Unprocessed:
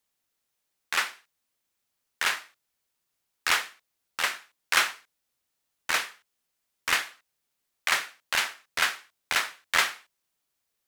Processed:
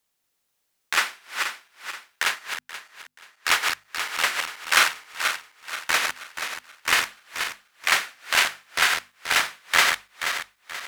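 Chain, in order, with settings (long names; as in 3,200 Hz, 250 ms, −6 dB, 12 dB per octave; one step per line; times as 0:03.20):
feedback delay that plays each chunk backwards 240 ms, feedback 62%, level −5 dB
mains-hum notches 50/100/150/200/250 Hz
0:02.23–0:03.63: expander for the loud parts 1.5 to 1, over −39 dBFS
level +4 dB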